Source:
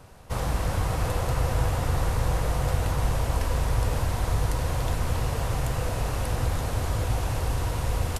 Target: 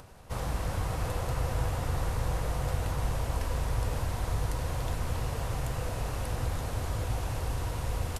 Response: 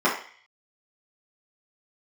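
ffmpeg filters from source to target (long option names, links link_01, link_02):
-af "acompressor=mode=upward:threshold=-40dB:ratio=2.5,volume=-5.5dB"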